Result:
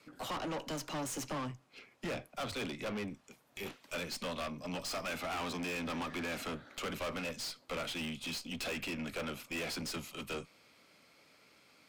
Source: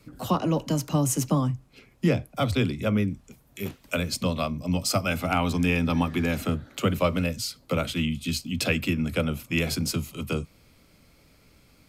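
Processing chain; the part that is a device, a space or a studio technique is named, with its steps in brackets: frequency weighting A; tube preamp driven hard (valve stage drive 36 dB, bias 0.5; treble shelf 5.4 kHz -5 dB); trim +1 dB

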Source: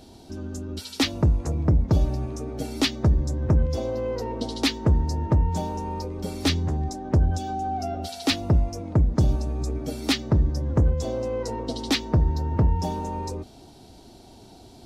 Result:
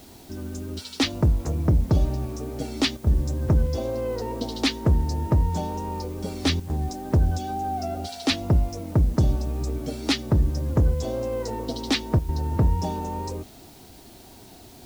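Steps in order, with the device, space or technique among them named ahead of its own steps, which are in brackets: worn cassette (low-pass 9.1 kHz; wow and flutter 28 cents; level dips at 2.97/6.60/12.19 s, 96 ms -11 dB; white noise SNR 29 dB)

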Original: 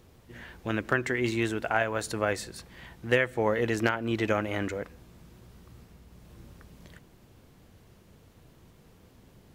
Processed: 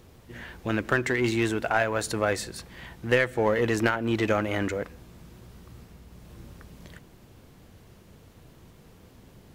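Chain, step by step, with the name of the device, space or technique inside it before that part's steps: parallel distortion (in parallel at -4.5 dB: hard clipper -26.5 dBFS, distortion -6 dB)

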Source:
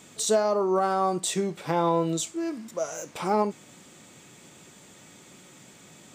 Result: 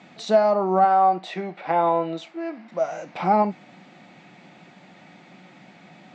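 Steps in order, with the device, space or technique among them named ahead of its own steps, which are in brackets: 0.84–2.72 s: tone controls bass -14 dB, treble -8 dB; kitchen radio (cabinet simulation 170–4000 Hz, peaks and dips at 180 Hz +7 dB, 430 Hz -8 dB, 740 Hz +9 dB, 1.1 kHz -3 dB, 2.1 kHz +3 dB, 3.3 kHz -6 dB); trim +3.5 dB

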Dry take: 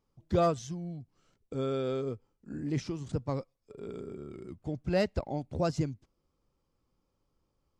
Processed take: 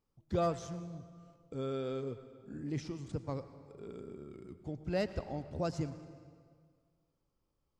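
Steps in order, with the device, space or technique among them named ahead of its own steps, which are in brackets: saturated reverb return (on a send at -10.5 dB: reverberation RT60 1.8 s, pre-delay 85 ms + saturation -27.5 dBFS, distortion -12 dB); on the sum: trim -5.5 dB

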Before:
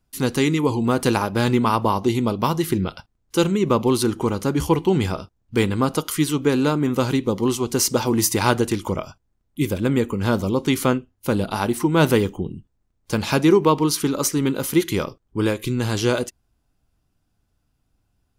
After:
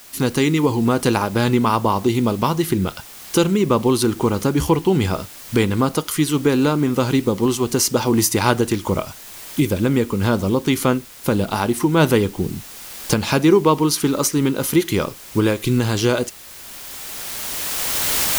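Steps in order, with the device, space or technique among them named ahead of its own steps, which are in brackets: cheap recorder with automatic gain (white noise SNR 24 dB; recorder AGC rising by 12 dB/s); trim +1.5 dB

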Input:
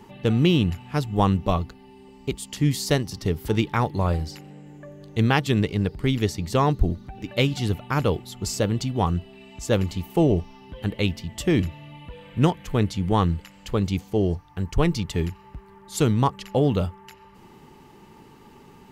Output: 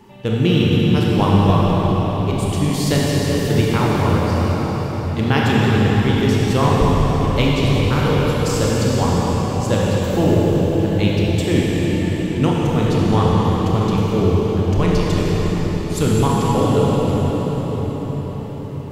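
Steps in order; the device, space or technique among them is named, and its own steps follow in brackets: cathedral (reverberation RT60 6.3 s, pre-delay 23 ms, DRR -6 dB)

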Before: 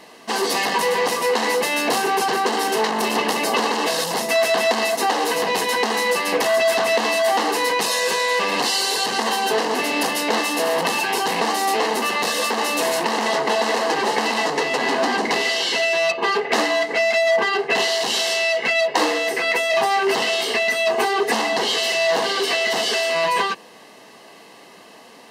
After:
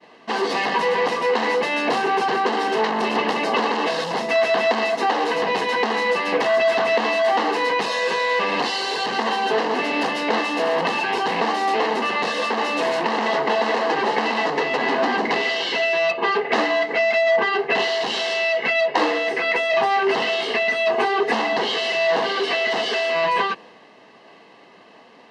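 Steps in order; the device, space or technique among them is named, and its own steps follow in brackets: hearing-loss simulation (low-pass 3.4 kHz 12 dB/octave; expander -42 dBFS); 22.59–23.22 s: high-pass 140 Hz

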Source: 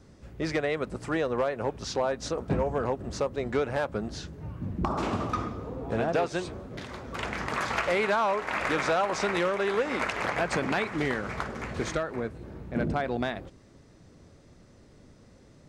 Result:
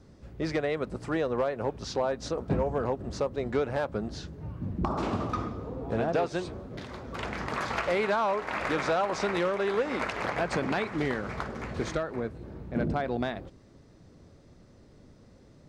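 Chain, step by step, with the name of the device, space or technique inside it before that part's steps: treble shelf 2.1 kHz -10 dB; presence and air boost (peaking EQ 4.4 kHz +5.5 dB 1.2 oct; treble shelf 9.5 kHz +6 dB)

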